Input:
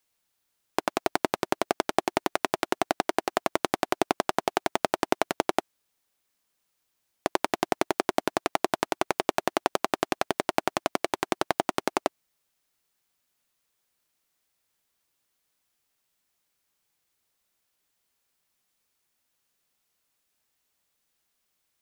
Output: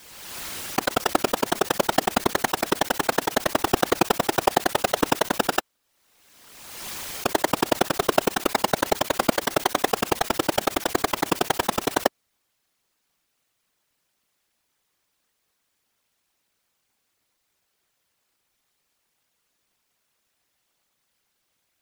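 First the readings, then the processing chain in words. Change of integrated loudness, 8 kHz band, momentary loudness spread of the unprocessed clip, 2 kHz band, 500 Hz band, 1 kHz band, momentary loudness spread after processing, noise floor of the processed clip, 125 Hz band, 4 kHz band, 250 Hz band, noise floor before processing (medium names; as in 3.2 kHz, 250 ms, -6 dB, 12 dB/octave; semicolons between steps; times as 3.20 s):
+4.5 dB, +9.0 dB, 3 LU, +5.0 dB, +4.0 dB, +3.5 dB, 6 LU, -75 dBFS, +8.5 dB, +7.0 dB, +4.5 dB, -77 dBFS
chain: square wave that keeps the level; whisper effect; swell ahead of each attack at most 37 dB/s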